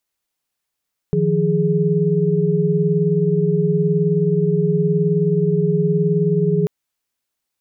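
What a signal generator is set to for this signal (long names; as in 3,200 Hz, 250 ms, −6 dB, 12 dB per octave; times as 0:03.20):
held notes D#3/F3/G#4 sine, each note −18.5 dBFS 5.54 s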